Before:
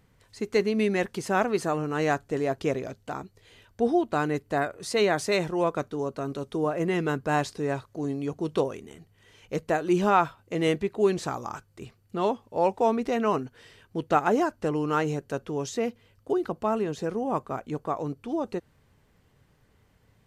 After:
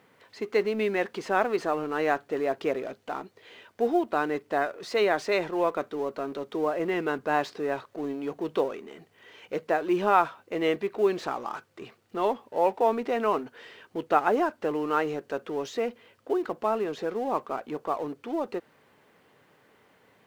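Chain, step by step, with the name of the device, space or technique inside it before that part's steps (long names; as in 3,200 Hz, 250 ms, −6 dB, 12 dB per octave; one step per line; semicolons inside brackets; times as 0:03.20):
phone line with mismatched companding (band-pass filter 320–3,300 Hz; mu-law and A-law mismatch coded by mu)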